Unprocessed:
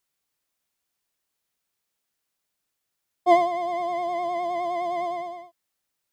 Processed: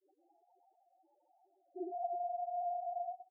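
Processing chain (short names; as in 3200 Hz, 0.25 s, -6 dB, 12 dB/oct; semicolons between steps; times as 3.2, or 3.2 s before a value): reverb RT60 0.35 s, pre-delay 3 ms, DRR -2.5 dB; upward compressor, threshold -21 dBFS; bands offset in time lows, highs 0.35 s, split 560 Hz; half-wave rectifier; Chebyshev band-pass 330–920 Hz, order 5; granular stretch 0.54×, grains 21 ms; compressor 6:1, threshold -37 dBFS, peak gain reduction 17.5 dB; loudest bins only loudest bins 2; grains 0.1 s, grains 23/s, pitch spread up and down by 0 st; gain +6 dB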